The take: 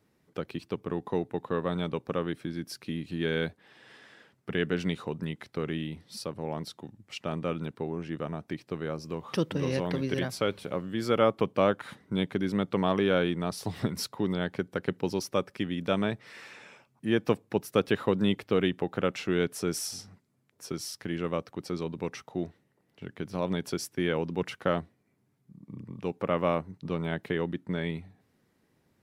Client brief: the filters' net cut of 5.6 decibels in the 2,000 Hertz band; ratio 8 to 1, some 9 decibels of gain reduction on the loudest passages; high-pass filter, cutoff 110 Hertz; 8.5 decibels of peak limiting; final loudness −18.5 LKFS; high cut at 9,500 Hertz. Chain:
high-pass filter 110 Hz
low-pass filter 9,500 Hz
parametric band 2,000 Hz −7.5 dB
downward compressor 8 to 1, threshold −29 dBFS
level +19.5 dB
brickwall limiter −4.5 dBFS

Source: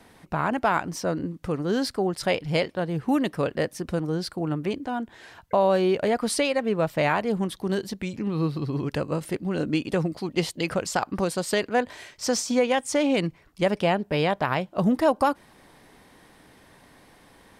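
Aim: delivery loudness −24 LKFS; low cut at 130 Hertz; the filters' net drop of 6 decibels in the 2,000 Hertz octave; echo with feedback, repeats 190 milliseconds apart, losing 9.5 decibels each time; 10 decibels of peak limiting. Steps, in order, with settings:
high-pass filter 130 Hz
parametric band 2,000 Hz −8 dB
brickwall limiter −20.5 dBFS
repeating echo 190 ms, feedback 33%, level −9.5 dB
level +6 dB

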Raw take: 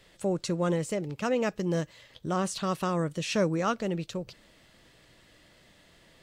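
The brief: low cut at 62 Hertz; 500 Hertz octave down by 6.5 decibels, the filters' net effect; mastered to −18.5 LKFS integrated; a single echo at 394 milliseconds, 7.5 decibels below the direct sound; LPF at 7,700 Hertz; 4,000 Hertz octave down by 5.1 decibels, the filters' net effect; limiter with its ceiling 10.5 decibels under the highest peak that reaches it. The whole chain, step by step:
high-pass filter 62 Hz
low-pass filter 7,700 Hz
parametric band 500 Hz −8 dB
parametric band 4,000 Hz −6.5 dB
brickwall limiter −28.5 dBFS
single-tap delay 394 ms −7.5 dB
level +19 dB

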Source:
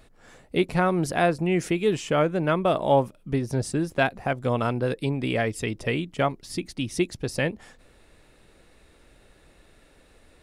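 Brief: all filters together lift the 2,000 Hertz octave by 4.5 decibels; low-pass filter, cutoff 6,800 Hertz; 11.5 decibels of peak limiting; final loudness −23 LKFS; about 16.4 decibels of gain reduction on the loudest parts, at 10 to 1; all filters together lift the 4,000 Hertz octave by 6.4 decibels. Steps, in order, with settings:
low-pass filter 6,800 Hz
parametric band 2,000 Hz +4 dB
parametric band 4,000 Hz +7.5 dB
downward compressor 10 to 1, threshold −32 dBFS
level +17.5 dB
brickwall limiter −12.5 dBFS

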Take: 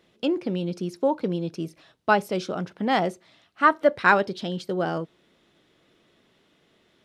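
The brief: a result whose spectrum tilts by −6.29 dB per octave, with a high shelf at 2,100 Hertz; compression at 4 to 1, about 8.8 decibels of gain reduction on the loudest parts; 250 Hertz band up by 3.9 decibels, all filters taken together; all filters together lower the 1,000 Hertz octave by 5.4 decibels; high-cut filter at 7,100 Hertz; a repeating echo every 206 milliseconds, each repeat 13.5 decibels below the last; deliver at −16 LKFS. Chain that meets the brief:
low-pass filter 7,100 Hz
parametric band 250 Hz +6 dB
parametric band 1,000 Hz −5.5 dB
high-shelf EQ 2,100 Hz −7.5 dB
downward compressor 4 to 1, threshold −24 dBFS
repeating echo 206 ms, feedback 21%, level −13.5 dB
level +14 dB

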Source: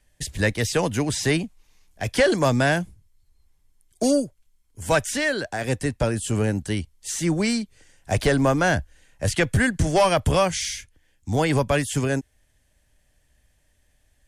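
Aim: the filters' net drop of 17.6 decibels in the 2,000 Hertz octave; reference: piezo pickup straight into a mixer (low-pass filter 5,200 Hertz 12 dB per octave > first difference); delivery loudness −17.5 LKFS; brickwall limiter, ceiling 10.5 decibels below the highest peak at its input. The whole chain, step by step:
parametric band 2,000 Hz −7.5 dB
brickwall limiter −21 dBFS
low-pass filter 5,200 Hz 12 dB per octave
first difference
level +25.5 dB

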